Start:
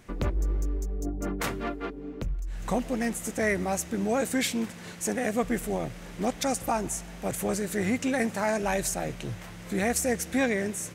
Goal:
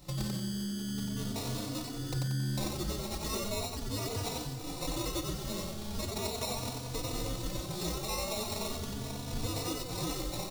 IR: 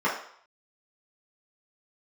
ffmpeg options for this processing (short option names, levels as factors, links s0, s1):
-filter_complex "[0:a]afftfilt=real='real(if(lt(b,272),68*(eq(floor(b/68),0)*1+eq(floor(b/68),1)*2+eq(floor(b/68),2)*3+eq(floor(b/68),3)*0)+mod(b,68),b),0)':imag='imag(if(lt(b,272),68*(eq(floor(b/68),0)*1+eq(floor(b/68),1)*2+eq(floor(b/68),2)*3+eq(floor(b/68),3)*0)+mod(b,68),b),0)':win_size=2048:overlap=0.75,aecho=1:1:7:0.43,acompressor=threshold=0.0178:ratio=8,acrusher=samples=29:mix=1:aa=0.000001,highshelf=f=2900:t=q:w=1.5:g=8.5,asplit=2[s0][s1];[s1]aecho=0:1:23|41|54:0.188|0.178|0.188[s2];[s0][s2]amix=inputs=2:normalize=0,asetrate=45938,aresample=44100,asplit=2[s3][s4];[s4]asplit=5[s5][s6][s7][s8][s9];[s5]adelay=91,afreqshift=75,volume=0.708[s10];[s6]adelay=182,afreqshift=150,volume=0.282[s11];[s7]adelay=273,afreqshift=225,volume=0.114[s12];[s8]adelay=364,afreqshift=300,volume=0.0452[s13];[s9]adelay=455,afreqshift=375,volume=0.0182[s14];[s10][s11][s12][s13][s14]amix=inputs=5:normalize=0[s15];[s3][s15]amix=inputs=2:normalize=0,asplit=2[s16][s17];[s17]adelay=3.4,afreqshift=0.39[s18];[s16][s18]amix=inputs=2:normalize=1,volume=1.33"